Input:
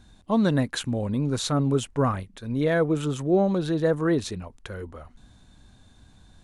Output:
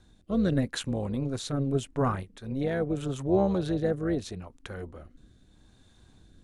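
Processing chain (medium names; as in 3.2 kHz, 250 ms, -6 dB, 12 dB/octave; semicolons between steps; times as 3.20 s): AM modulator 270 Hz, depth 40%; rotary cabinet horn 0.8 Hz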